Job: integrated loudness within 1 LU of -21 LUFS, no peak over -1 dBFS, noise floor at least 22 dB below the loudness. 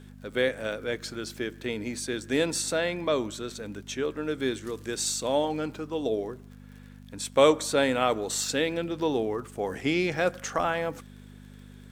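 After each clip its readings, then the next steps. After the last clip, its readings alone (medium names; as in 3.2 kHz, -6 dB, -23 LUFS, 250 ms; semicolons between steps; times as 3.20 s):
tick rate 39 per s; hum 50 Hz; highest harmonic 250 Hz; hum level -45 dBFS; loudness -28.5 LUFS; peak level -6.5 dBFS; loudness target -21.0 LUFS
-> de-click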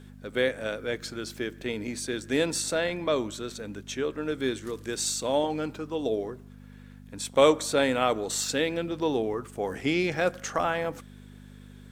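tick rate 0.42 per s; hum 50 Hz; highest harmonic 250 Hz; hum level -45 dBFS
-> de-hum 50 Hz, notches 5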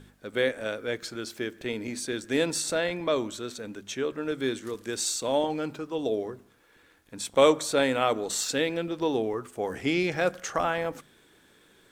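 hum not found; loudness -28.5 LUFS; peak level -6.5 dBFS; loudness target -21.0 LUFS
-> trim +7.5 dB; peak limiter -1 dBFS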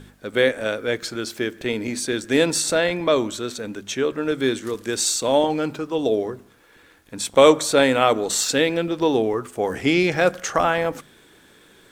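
loudness -21.0 LUFS; peak level -1.0 dBFS; noise floor -53 dBFS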